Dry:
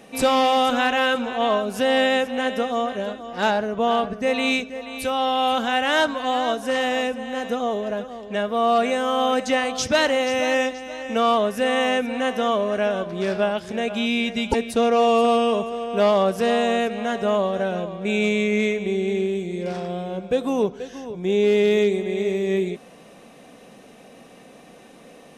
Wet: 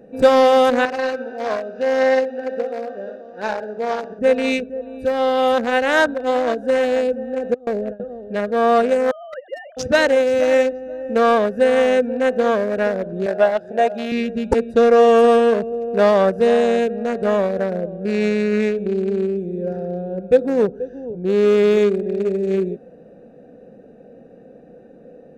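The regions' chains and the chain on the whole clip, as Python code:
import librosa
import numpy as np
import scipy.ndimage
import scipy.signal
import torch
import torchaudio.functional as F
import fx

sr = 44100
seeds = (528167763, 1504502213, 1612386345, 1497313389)

y = fx.chain(x, sr, fx.cvsd(bps=32000),
    fx.highpass(hz=750.0, slope=6),
    fx.echo_feedback(ms=61, feedback_pct=57, wet_db=-9.0), at=(0.85, 4.19))
y = fx.chain(y, sr, fx.gate_hold(open_db=-15.0, close_db=-24.0, hold_ms=71.0, range_db=-21, attack_ms=1.4, release_ms=100.0),
    fx.low_shelf(hz=130.0, db=6.0), at=(7.54, 8.0))
y = fx.chain(y, sr, fx.sine_speech(),
    fx.highpass(hz=1300.0, slope=12), at=(9.11, 9.77))
y = fx.chain(y, sr, fx.highpass(hz=410.0, slope=6),
    fx.peak_eq(hz=700.0, db=13.0, octaves=0.29), at=(13.26, 14.12))
y = fx.wiener(y, sr, points=41)
y = fx.graphic_eq_31(y, sr, hz=(500, 1600, 3150), db=(8, 6, -6))
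y = y * 10.0 ** (3.0 / 20.0)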